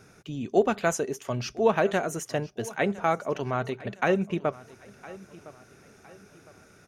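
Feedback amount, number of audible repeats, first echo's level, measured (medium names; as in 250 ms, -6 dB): 39%, 2, -19.5 dB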